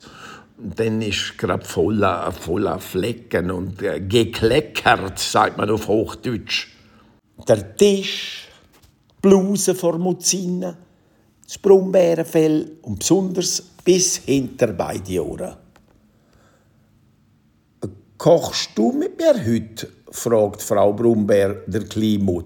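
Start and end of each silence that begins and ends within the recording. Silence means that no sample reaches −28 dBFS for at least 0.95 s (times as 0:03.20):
0:15.50–0:17.83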